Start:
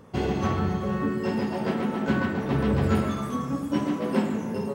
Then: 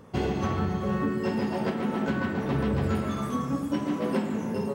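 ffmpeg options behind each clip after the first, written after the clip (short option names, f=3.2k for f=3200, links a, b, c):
-af "alimiter=limit=-17dB:level=0:latency=1:release=248"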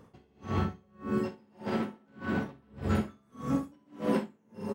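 -filter_complex "[0:a]dynaudnorm=f=170:g=5:m=4dB,asplit=2[a][b];[b]aecho=0:1:44|62:0.531|0.501[c];[a][c]amix=inputs=2:normalize=0,aeval=exprs='val(0)*pow(10,-38*(0.5-0.5*cos(2*PI*1.7*n/s))/20)':c=same,volume=-5dB"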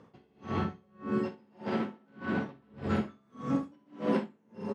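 -af "highpass=120,lowpass=5.1k"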